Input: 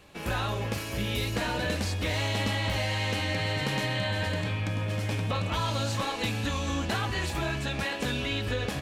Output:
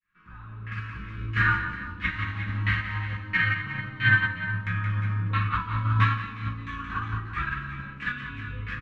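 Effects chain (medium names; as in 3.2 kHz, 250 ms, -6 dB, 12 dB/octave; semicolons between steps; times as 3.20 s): fade-in on the opening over 0.87 s; FFT filter 200 Hz 0 dB, 690 Hz -27 dB, 1.2 kHz +8 dB; LFO low-pass saw down 1.5 Hz 410–2000 Hz; multi-tap echo 174/353/366 ms -5.5/-12/-9 dB; simulated room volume 33 m³, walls mixed, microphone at 0.54 m; upward expansion 2.5:1, over -23 dBFS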